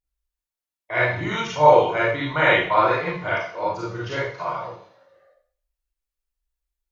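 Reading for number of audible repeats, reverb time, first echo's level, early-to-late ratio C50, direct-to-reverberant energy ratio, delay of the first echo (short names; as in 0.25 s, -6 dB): none, 0.50 s, none, -0.5 dB, -7.0 dB, none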